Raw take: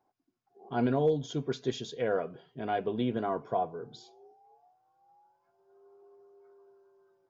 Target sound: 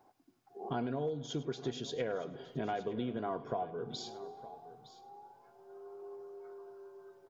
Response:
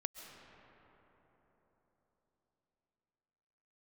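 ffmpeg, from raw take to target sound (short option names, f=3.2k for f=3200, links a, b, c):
-filter_complex "[0:a]acompressor=threshold=-45dB:ratio=6,aecho=1:1:914:0.15,asplit=2[a][b];[1:a]atrim=start_sample=2205,adelay=102[c];[b][c]afir=irnorm=-1:irlink=0,volume=-14dB[d];[a][d]amix=inputs=2:normalize=0,volume=10dB"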